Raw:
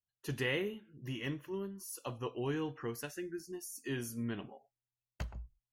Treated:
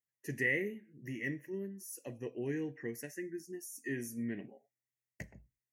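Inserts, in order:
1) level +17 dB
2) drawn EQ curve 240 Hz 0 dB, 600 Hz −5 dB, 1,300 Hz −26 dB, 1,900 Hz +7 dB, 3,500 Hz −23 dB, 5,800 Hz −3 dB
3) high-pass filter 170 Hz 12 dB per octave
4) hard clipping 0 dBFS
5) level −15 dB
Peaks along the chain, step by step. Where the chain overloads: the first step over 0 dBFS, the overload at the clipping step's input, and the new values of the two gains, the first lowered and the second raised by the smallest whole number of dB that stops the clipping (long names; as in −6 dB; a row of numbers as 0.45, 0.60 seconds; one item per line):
−5.0, −5.5, −5.5, −5.5, −20.5 dBFS
no step passes full scale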